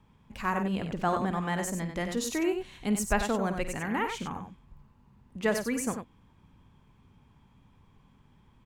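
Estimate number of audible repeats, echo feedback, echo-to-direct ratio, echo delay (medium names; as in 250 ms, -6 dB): 2, no regular repeats, -6.0 dB, 53 ms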